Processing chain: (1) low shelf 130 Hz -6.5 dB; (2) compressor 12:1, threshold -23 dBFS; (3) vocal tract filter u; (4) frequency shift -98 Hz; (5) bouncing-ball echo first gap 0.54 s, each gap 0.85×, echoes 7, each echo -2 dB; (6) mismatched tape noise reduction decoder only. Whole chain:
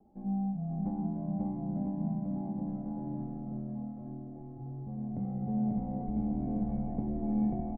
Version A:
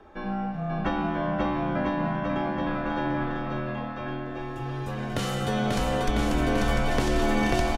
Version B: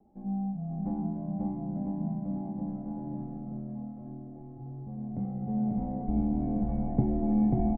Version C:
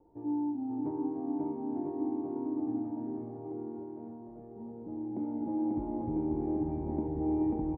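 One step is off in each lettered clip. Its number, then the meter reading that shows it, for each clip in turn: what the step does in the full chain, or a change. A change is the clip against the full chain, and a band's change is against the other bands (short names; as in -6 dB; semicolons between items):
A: 3, 250 Hz band -12.5 dB; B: 2, mean gain reduction 2.0 dB; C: 4, 125 Hz band -8.5 dB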